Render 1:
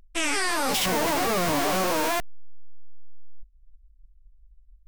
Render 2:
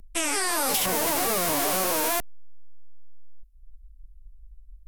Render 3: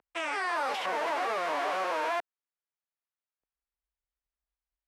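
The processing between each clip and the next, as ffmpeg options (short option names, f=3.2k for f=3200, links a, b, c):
-filter_complex "[0:a]lowshelf=f=420:g=7,acrossover=split=360|1500|3100[a][b][c][d];[a]acompressor=threshold=-37dB:ratio=4[e];[b]acompressor=threshold=-27dB:ratio=4[f];[c]acompressor=threshold=-37dB:ratio=4[g];[d]acompressor=threshold=-30dB:ratio=4[h];[e][f][g][h]amix=inputs=4:normalize=0,equalizer=f=12k:w=0.74:g=11.5"
-af "highpass=620,lowpass=2.1k"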